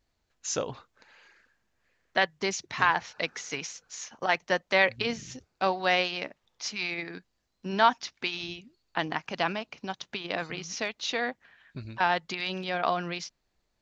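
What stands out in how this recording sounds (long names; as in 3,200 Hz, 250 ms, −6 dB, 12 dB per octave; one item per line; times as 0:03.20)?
background noise floor −77 dBFS
spectral slope −2.5 dB per octave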